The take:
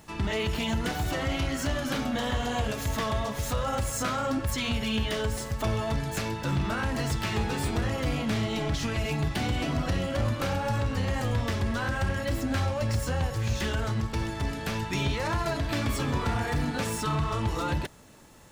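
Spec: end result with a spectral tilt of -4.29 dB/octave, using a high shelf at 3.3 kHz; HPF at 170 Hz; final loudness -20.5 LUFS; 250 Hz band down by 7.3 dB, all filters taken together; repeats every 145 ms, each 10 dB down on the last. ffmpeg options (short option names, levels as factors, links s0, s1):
-af "highpass=170,equalizer=f=250:t=o:g=-7.5,highshelf=f=3300:g=-5,aecho=1:1:145|290|435|580:0.316|0.101|0.0324|0.0104,volume=4.22"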